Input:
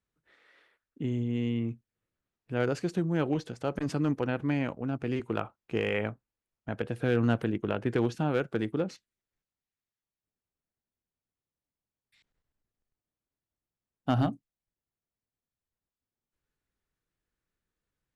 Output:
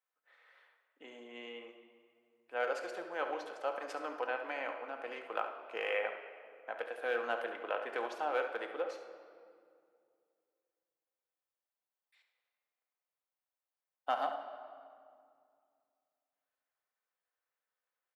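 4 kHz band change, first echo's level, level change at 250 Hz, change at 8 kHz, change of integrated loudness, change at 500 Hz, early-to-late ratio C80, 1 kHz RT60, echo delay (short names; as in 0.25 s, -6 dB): -4.5 dB, -10.0 dB, -22.5 dB, n/a, -7.5 dB, -5.5 dB, 9.0 dB, 2.1 s, 70 ms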